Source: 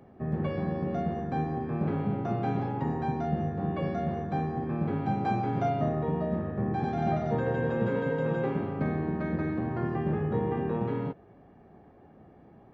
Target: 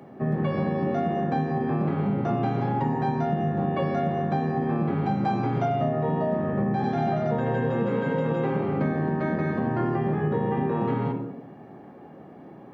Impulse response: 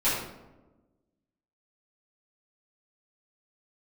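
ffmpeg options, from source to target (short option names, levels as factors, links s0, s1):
-filter_complex "[0:a]highpass=150,asplit=2[s0][s1];[1:a]atrim=start_sample=2205[s2];[s1][s2]afir=irnorm=-1:irlink=0,volume=0.15[s3];[s0][s3]amix=inputs=2:normalize=0,acompressor=threshold=0.0355:ratio=6,volume=2.37"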